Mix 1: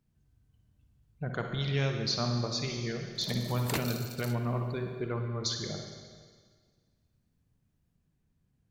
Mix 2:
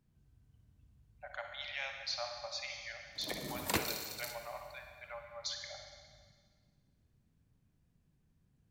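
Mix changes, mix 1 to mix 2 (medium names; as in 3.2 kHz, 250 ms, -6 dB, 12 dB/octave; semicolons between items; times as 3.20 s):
speech: add rippled Chebyshev high-pass 560 Hz, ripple 9 dB; background: send +8.0 dB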